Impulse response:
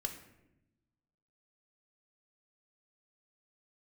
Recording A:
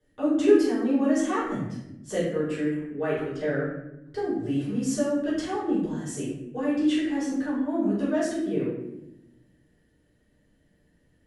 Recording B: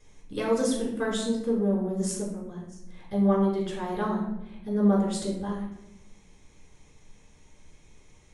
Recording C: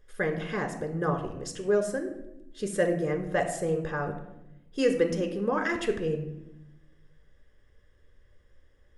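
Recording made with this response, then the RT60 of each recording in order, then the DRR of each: C; 0.85, 0.85, 0.90 seconds; −11.0, −3.5, 5.0 decibels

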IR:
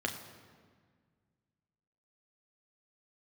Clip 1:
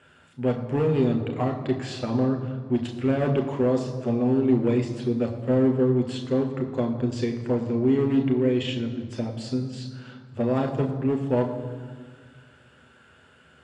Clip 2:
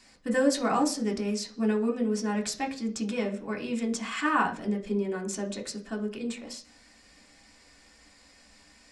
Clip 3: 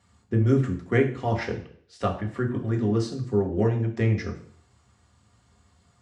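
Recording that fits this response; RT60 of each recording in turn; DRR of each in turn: 1; 1.7, 0.45, 0.55 seconds; 2.5, 0.0, 0.5 decibels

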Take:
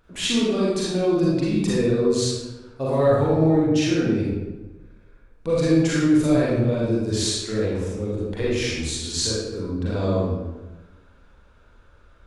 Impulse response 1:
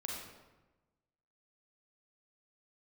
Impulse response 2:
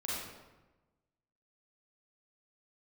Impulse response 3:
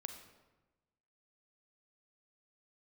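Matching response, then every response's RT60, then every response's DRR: 2; 1.1, 1.1, 1.1 seconds; −2.5, −7.0, 6.0 decibels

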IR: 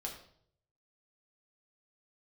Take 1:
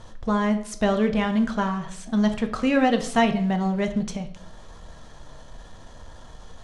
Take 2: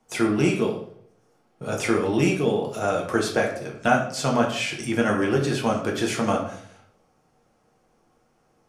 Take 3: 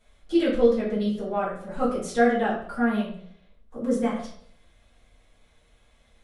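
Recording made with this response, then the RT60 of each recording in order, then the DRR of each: 2; 0.65, 0.65, 0.65 seconds; 5.5, −1.0, −8.0 decibels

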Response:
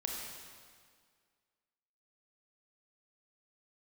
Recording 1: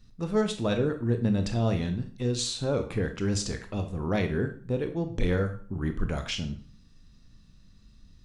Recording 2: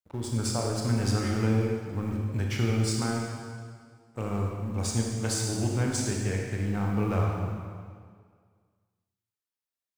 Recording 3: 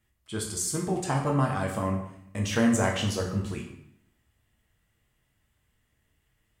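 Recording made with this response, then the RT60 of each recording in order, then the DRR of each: 2; 0.45, 1.9, 0.75 seconds; 6.5, −1.0, −0.5 decibels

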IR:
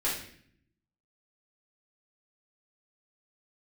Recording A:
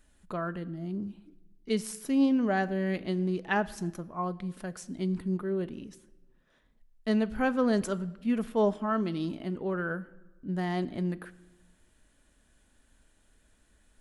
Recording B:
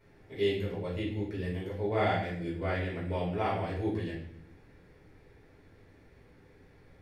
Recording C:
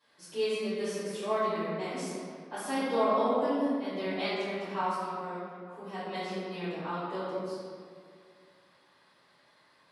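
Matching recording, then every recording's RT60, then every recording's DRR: B; 1.2, 0.60, 2.2 seconds; 12.0, −8.0, −16.5 decibels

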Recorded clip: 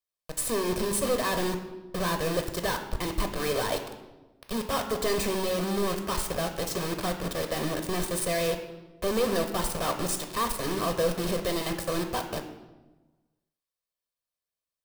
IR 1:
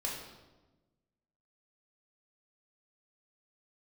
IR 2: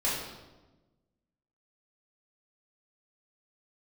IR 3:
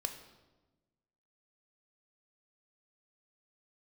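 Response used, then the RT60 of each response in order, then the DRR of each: 3; 1.2, 1.2, 1.2 seconds; −4.5, −9.5, 5.0 decibels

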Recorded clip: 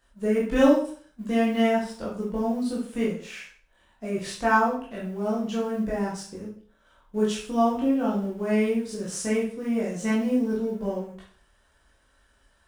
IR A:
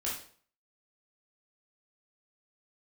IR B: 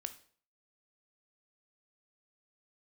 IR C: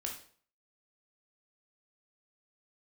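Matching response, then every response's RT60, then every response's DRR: A; 0.50, 0.50, 0.50 seconds; −6.0, 9.0, 0.0 decibels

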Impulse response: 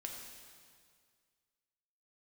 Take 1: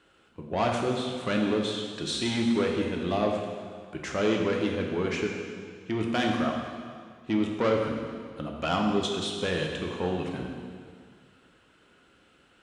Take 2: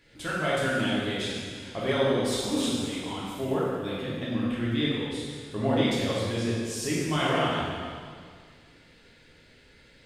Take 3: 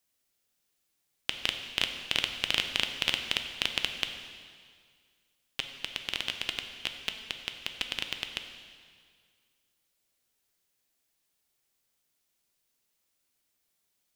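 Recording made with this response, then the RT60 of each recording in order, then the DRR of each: 1; 2.0, 2.0, 2.0 seconds; 0.0, −8.0, 5.5 decibels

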